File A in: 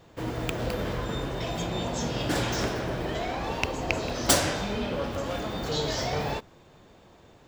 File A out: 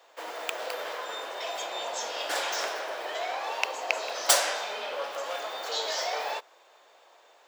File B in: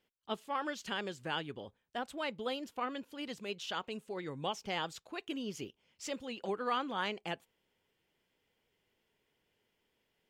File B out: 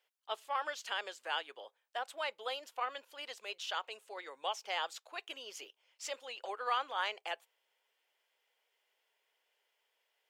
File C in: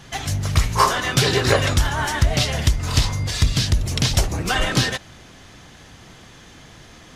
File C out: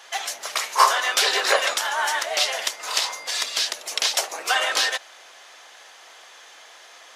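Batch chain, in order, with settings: HPF 560 Hz 24 dB/oct; gain +1 dB

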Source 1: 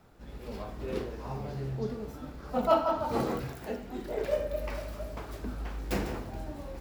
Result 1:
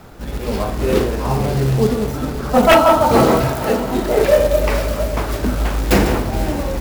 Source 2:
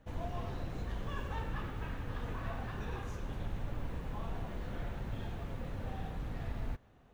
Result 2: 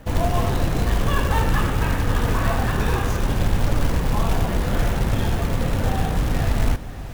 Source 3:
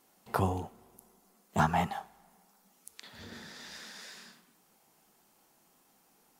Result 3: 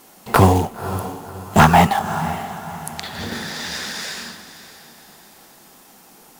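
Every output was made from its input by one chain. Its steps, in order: short-mantissa float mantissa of 2-bit; diffused feedback echo 0.544 s, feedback 41%, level -14 dB; sine folder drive 8 dB, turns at -11.5 dBFS; gain +7 dB

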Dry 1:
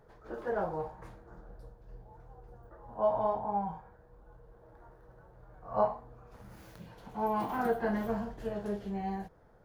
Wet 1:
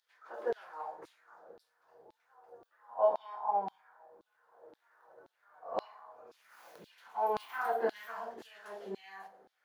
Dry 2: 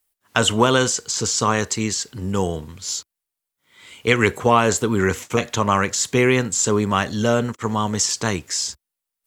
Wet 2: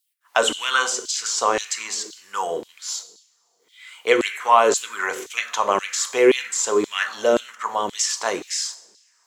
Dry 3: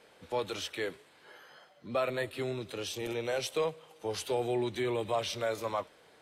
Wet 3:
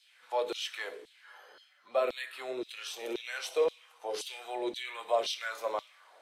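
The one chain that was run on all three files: two-slope reverb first 0.61 s, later 3.5 s, from -26 dB, DRR 8.5 dB; LFO high-pass saw down 1.9 Hz 320–4100 Hz; gain -3 dB

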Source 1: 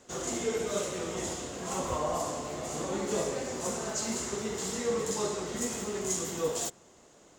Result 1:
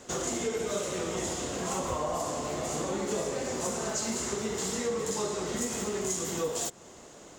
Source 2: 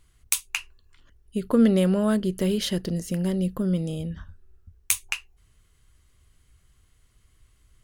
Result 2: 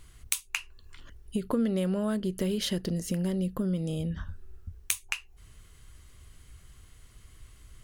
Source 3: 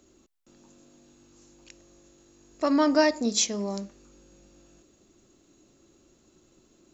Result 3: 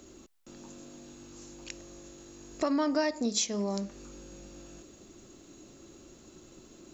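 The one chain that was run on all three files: compressor 3:1, threshold -39 dBFS; gain +8 dB

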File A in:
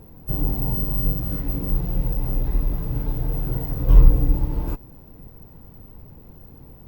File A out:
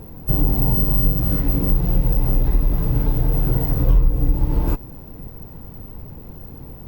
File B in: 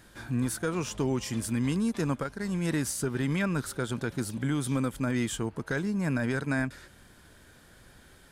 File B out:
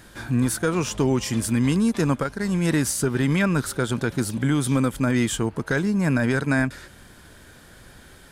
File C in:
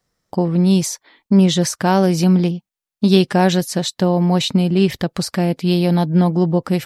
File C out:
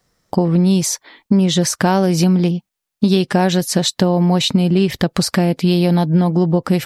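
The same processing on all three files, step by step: compressor 5:1, threshold -19 dBFS; gain +7.5 dB

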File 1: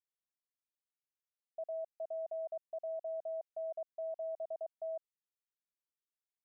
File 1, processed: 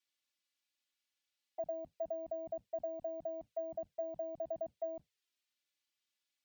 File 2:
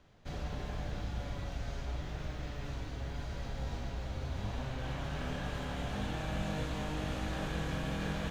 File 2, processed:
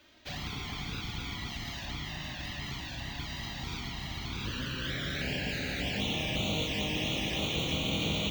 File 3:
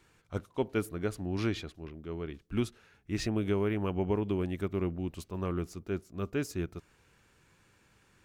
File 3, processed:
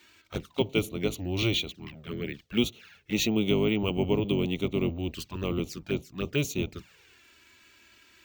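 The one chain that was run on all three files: octaver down 1 oct, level +1 dB; weighting filter D; envelope flanger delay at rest 3.5 ms, full sweep at -31.5 dBFS; careless resampling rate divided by 2×, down filtered, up hold; gain +5 dB

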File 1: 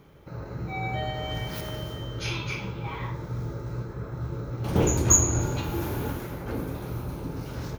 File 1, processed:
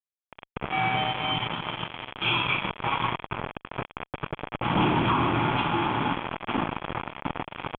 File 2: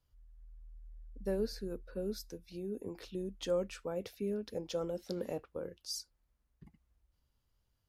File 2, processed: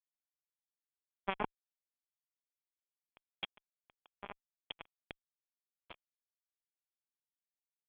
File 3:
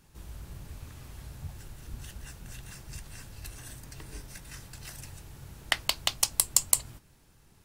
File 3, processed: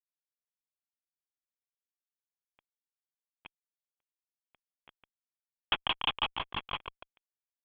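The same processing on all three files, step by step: dynamic EQ 490 Hz, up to -5 dB, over -49 dBFS, Q 2.4; Bessel high-pass 210 Hz, order 4; fixed phaser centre 2000 Hz, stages 6; on a send: feedback echo 0.146 s, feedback 41%, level -13.5 dB; on the sum: fuzz box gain 47 dB, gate -37 dBFS; rippled Chebyshev low-pass 3400 Hz, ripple 6 dB; gain -1.5 dB

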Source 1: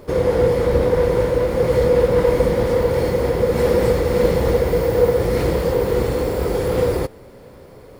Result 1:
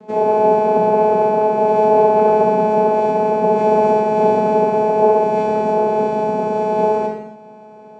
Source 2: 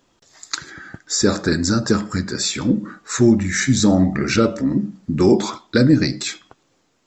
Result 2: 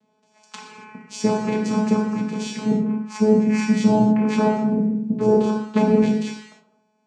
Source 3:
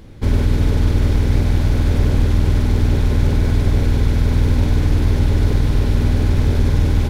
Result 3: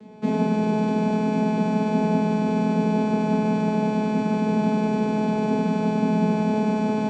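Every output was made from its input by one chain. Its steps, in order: vocoder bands 8, saw 214 Hz; non-linear reverb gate 0.31 s falling, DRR -0.5 dB

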